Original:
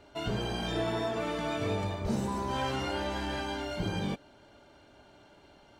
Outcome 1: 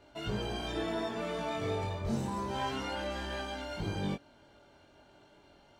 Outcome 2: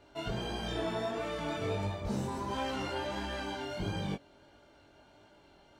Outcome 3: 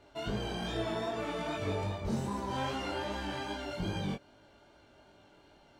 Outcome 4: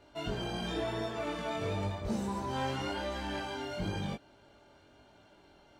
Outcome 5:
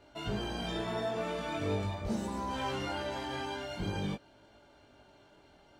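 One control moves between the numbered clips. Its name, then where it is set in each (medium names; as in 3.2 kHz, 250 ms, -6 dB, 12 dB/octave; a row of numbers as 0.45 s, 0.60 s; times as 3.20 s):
chorus, rate: 0.3 Hz, 1.5 Hz, 2.5 Hz, 0.96 Hz, 0.45 Hz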